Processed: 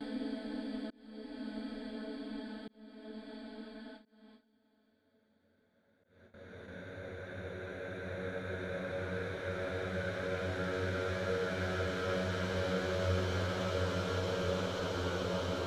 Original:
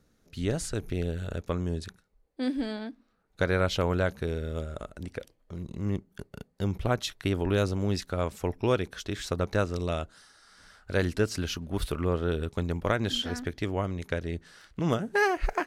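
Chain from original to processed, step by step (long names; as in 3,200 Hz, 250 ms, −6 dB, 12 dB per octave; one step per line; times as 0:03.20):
extreme stretch with random phases 13×, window 1.00 s, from 0:02.64
noise gate with hold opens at −31 dBFS
volume swells 652 ms
level −8.5 dB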